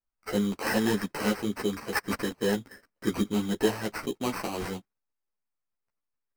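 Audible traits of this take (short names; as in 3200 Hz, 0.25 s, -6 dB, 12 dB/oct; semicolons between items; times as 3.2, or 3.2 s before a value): aliases and images of a low sample rate 3500 Hz, jitter 0%; a shimmering, thickened sound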